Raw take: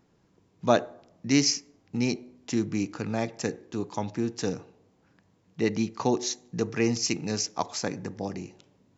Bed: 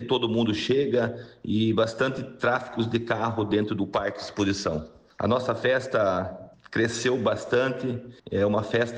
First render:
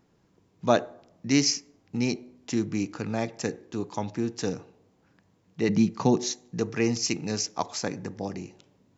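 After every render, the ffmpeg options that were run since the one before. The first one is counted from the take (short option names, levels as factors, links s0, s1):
-filter_complex "[0:a]asettb=1/sr,asplit=3[s0][s1][s2];[s0]atrim=end=5.684[s3];[s1]atrim=start=5.68:end=6.32,asetpts=PTS-STARTPTS,afade=t=in:d=0.004:c=qsin,afade=t=out:st=0.636:d=0.004:c=qsin,equalizer=f=170:w=1.5:g=11.5[s4];[s2]atrim=start=6.316[s5];[s3][s4]acrossfade=d=0.004:c1=hsin:c2=qsin[s6];[s6][s5]acrossfade=d=0.004:c1=qsin:c2=hsin"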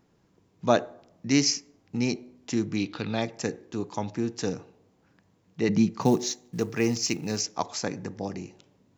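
-filter_complex "[0:a]asettb=1/sr,asplit=3[s0][s1][s2];[s0]atrim=end=2.764[s3];[s1]atrim=start=2.76:end=3.22,asetpts=PTS-STARTPTS,afade=t=in:d=0.004:c=qsin,afade=t=out:st=0.456:d=0.004:c=qsin,lowpass=f=3700:t=q:w=6.3[s4];[s2]atrim=start=3.216[s5];[s3][s4]acrossfade=d=0.004:c1=hsin:c2=qsin[s6];[s6][s5]acrossfade=d=0.004:c1=qsin:c2=hsin,asettb=1/sr,asplit=3[s7][s8][s9];[s7]atrim=end=6.014[s10];[s8]atrim=start=6.01:end=7.41,asetpts=PTS-STARTPTS,afade=t=in:d=0.004:c=qsin,afade=t=out:st=1.396:d=0.004:c=qsin,acrusher=bits=7:mode=log:mix=0:aa=0.000001[s11];[s9]atrim=start=7.406[s12];[s10][s11]acrossfade=d=0.004:c1=hsin:c2=qsin[s13];[s13][s12]acrossfade=d=0.004:c1=qsin:c2=hsin"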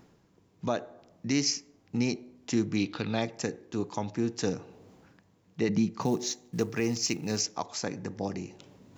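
-af "areverse,acompressor=mode=upward:threshold=0.00562:ratio=2.5,areverse,alimiter=limit=0.15:level=0:latency=1:release=335"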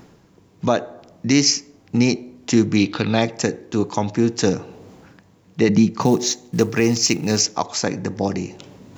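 -af "volume=3.76"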